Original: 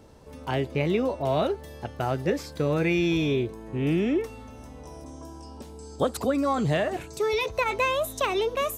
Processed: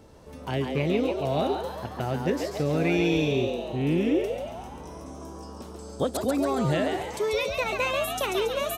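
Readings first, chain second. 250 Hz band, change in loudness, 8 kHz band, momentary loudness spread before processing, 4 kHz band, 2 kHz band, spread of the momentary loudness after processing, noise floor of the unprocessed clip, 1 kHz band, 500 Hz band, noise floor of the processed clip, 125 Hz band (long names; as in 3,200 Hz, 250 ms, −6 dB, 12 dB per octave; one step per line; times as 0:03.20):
+0.5 dB, −0.5 dB, +1.5 dB, 19 LU, +1.0 dB, −0.5 dB, 17 LU, −44 dBFS, −1.5 dB, 0.0 dB, −42 dBFS, 0.0 dB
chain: echo with shifted repeats 139 ms, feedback 51%, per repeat +120 Hz, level −5 dB
dynamic equaliser 1,100 Hz, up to −6 dB, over −37 dBFS, Q 0.9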